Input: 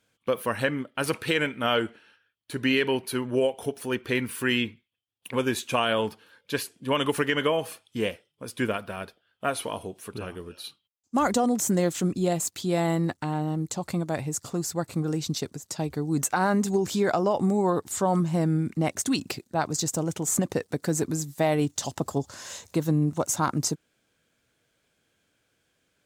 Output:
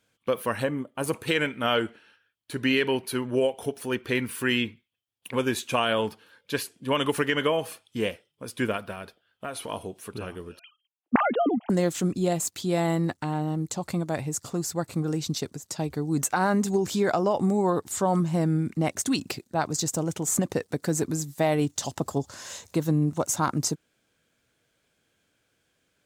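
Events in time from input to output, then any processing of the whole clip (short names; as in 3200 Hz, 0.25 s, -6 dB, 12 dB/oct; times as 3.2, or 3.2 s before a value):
0.63–1.27 spectral gain 1200–6100 Hz -8 dB
8.92–9.69 compressor 2.5:1, threshold -33 dBFS
10.59–11.7 sine-wave speech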